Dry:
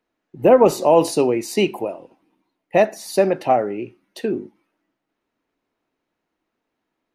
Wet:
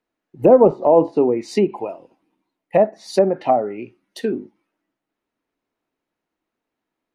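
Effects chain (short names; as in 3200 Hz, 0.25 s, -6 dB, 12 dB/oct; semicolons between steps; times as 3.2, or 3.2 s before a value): spectral noise reduction 6 dB; treble ducked by the level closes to 810 Hz, closed at -14 dBFS; gain +2 dB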